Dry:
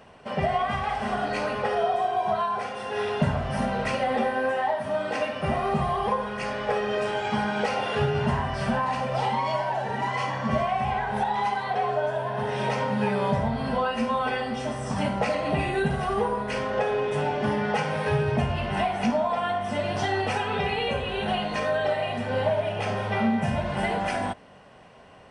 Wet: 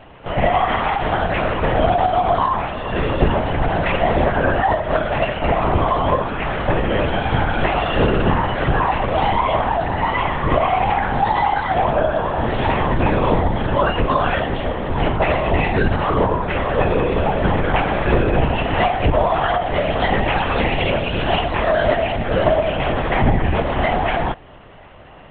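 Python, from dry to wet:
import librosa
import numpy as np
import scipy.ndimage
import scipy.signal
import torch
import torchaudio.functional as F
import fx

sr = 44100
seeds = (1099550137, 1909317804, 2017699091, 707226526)

y = fx.lpc_vocoder(x, sr, seeds[0], excitation='whisper', order=10)
y = y * librosa.db_to_amplitude(8.5)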